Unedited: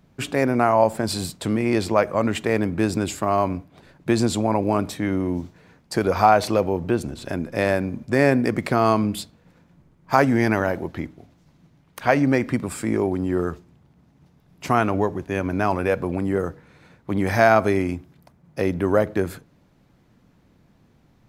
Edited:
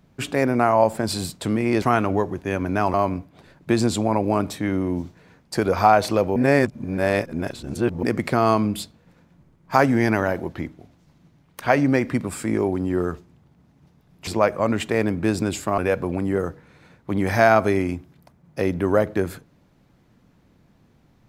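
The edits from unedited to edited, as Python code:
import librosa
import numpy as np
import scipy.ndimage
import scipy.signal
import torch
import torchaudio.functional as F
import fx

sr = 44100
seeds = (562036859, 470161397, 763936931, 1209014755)

y = fx.edit(x, sr, fx.swap(start_s=1.82, length_s=1.51, other_s=14.66, other_length_s=1.12),
    fx.reverse_span(start_s=6.75, length_s=1.67), tone=tone)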